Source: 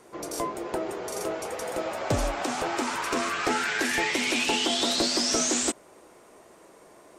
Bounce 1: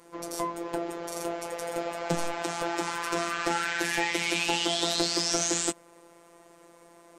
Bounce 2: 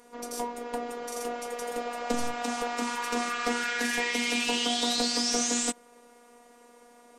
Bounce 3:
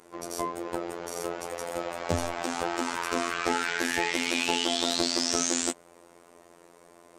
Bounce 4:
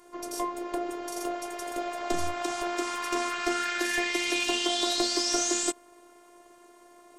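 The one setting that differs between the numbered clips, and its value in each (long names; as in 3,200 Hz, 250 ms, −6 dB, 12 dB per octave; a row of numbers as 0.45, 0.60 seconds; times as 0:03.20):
phases set to zero, frequency: 170, 240, 86, 350 Hertz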